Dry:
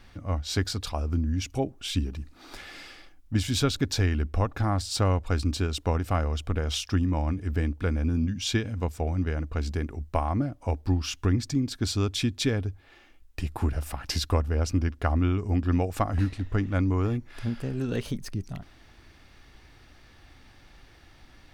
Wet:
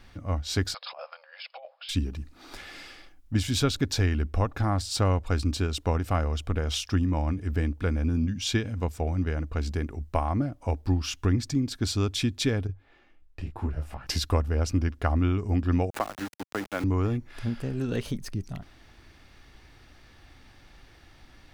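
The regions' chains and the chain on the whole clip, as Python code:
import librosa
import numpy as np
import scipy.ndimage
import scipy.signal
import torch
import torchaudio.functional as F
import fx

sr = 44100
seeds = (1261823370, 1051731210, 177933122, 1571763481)

y = fx.chain(x, sr, fx.brickwall_bandpass(low_hz=500.0, high_hz=5300.0),
    fx.over_compress(threshold_db=-41.0, ratio=-1.0), at=(0.74, 1.89))
y = fx.chain(y, sr, fx.lowpass(hz=2200.0, slope=6),
    fx.detune_double(cents=21), at=(12.67, 14.07))
y = fx.chain(y, sr, fx.highpass(hz=340.0, slope=12),
    fx.sample_gate(floor_db=-35.5),
    fx.band_squash(depth_pct=70), at=(15.9, 16.84))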